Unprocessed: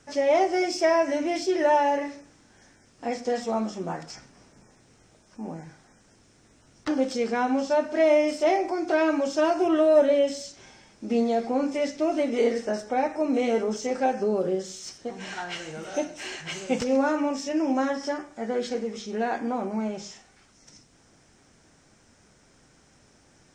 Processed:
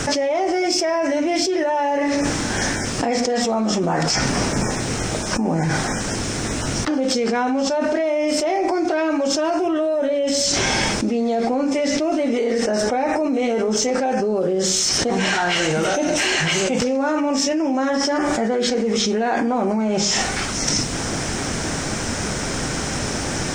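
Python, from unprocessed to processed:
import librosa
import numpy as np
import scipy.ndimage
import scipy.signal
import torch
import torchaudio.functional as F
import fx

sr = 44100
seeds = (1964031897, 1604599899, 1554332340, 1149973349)

y = fx.env_flatten(x, sr, amount_pct=100)
y = y * librosa.db_to_amplitude(-5.5)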